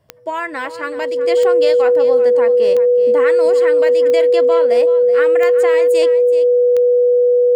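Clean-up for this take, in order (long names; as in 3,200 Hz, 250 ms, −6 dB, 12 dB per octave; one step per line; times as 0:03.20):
click removal
notch filter 490 Hz, Q 30
echo removal 378 ms −13.5 dB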